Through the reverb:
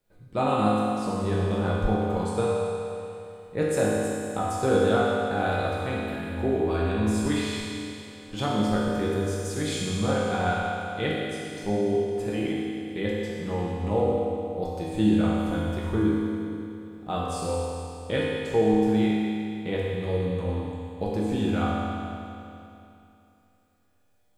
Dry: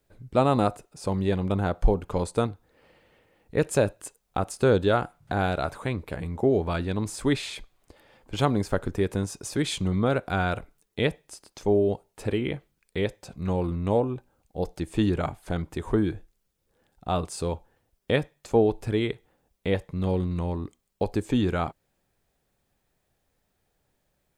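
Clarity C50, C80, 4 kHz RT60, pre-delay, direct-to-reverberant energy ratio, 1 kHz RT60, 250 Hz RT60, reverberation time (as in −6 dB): −3.0 dB, −1.5 dB, 2.7 s, 4 ms, −7.0 dB, 2.8 s, 2.8 s, 2.8 s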